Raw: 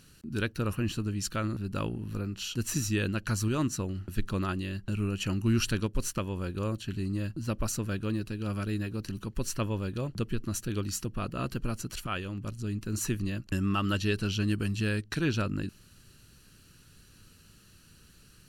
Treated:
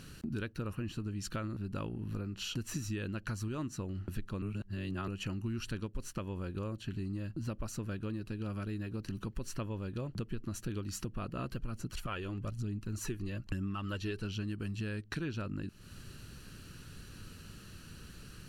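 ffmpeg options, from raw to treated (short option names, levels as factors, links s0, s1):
-filter_complex "[0:a]asplit=3[s0][s1][s2];[s0]afade=t=out:st=11.51:d=0.02[s3];[s1]aphaser=in_gain=1:out_gain=1:delay=3:decay=0.4:speed=1.1:type=triangular,afade=t=in:st=11.51:d=0.02,afade=t=out:st=14.23:d=0.02[s4];[s2]afade=t=in:st=14.23:d=0.02[s5];[s3][s4][s5]amix=inputs=3:normalize=0,asplit=3[s6][s7][s8];[s6]atrim=end=4.422[s9];[s7]atrim=start=4.418:end=5.082,asetpts=PTS-STARTPTS,areverse[s10];[s8]atrim=start=5.078[s11];[s9][s10]acrossfade=d=0.004:c1=hsin:c2=hsin[s12];[s12][s11]acrossfade=d=0.004:c1=hsin:c2=hsin,highshelf=f=3800:g=-7.5,acompressor=threshold=0.00631:ratio=6,volume=2.51"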